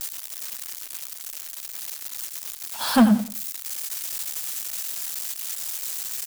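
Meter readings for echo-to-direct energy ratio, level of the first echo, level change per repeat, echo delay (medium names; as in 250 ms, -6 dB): -12.5 dB, -13.0 dB, -12.0 dB, 89 ms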